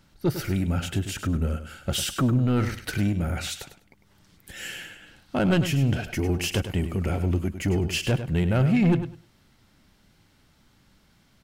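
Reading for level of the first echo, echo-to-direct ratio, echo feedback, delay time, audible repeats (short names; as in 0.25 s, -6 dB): -10.5 dB, -10.5 dB, 19%, 0.101 s, 2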